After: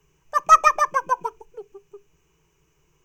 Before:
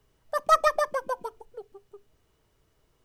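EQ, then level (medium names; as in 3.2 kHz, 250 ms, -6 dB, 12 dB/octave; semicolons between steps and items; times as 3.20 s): rippled EQ curve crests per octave 0.74, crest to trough 11 dB; dynamic bell 1.2 kHz, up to +7 dB, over -35 dBFS, Q 1; graphic EQ with 31 bands 160 Hz +7 dB, 315 Hz +4 dB, 1.6 kHz +10 dB, 2.5 kHz +6 dB, 6.3 kHz +8 dB, 12.5 kHz +3 dB; -1.0 dB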